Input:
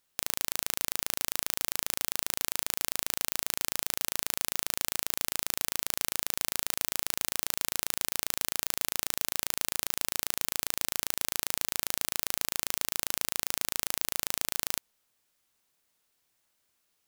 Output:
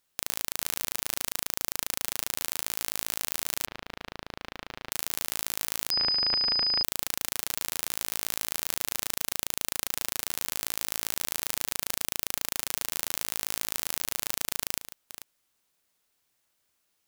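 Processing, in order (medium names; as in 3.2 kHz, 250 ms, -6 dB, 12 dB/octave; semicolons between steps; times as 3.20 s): chunks repeated in reverse 293 ms, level -11.5 dB; 3.66–4.92 s: distance through air 310 m; 5.91–6.83 s: class-D stage that switches slowly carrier 5 kHz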